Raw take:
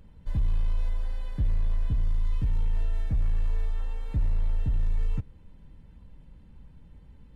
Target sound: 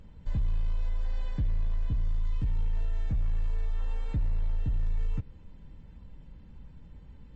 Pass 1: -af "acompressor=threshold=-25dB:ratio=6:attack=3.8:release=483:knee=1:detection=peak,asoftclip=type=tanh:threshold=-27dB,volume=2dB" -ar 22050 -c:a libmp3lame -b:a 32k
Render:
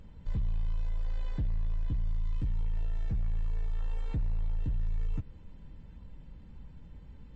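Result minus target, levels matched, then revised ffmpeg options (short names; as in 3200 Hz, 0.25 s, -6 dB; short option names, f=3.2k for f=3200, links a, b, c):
soft clip: distortion +15 dB
-af "acompressor=threshold=-25dB:ratio=6:attack=3.8:release=483:knee=1:detection=peak,asoftclip=type=tanh:threshold=-18dB,volume=2dB" -ar 22050 -c:a libmp3lame -b:a 32k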